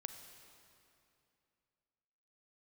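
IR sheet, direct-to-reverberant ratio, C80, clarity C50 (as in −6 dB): 7.0 dB, 8.5 dB, 7.5 dB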